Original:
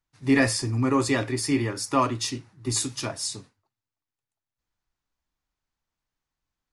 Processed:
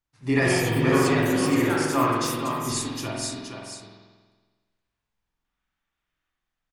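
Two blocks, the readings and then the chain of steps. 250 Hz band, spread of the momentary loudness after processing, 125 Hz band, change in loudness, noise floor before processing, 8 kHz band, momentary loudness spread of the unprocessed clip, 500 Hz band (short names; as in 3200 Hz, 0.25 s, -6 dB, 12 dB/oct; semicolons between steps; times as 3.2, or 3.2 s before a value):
+1.5 dB, 16 LU, +2.0 dB, +2.0 dB, under -85 dBFS, -1.5 dB, 10 LU, +4.5 dB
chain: spectral gain 5.45–6.3, 1100–3800 Hz +7 dB; on a send: echo 0.471 s -6.5 dB; on the sum: echoes that change speed 0.227 s, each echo +5 st, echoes 2, each echo -6 dB; spring tank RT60 1.4 s, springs 46 ms, chirp 55 ms, DRR -2.5 dB; gain -3.5 dB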